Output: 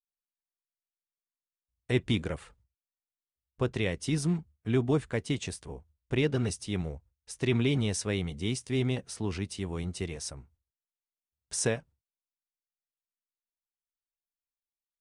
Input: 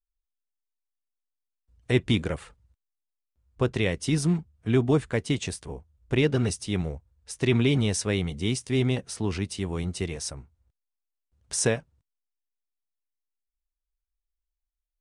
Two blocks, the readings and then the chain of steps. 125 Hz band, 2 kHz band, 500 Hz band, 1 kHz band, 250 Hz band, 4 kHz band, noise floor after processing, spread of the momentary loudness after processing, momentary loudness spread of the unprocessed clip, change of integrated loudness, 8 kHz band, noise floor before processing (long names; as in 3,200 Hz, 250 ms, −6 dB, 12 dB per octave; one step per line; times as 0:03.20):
−4.5 dB, −4.5 dB, −4.5 dB, −4.5 dB, −4.5 dB, −4.5 dB, below −85 dBFS, 12 LU, 12 LU, −4.5 dB, −4.5 dB, below −85 dBFS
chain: noise gate with hold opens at −51 dBFS
level −4.5 dB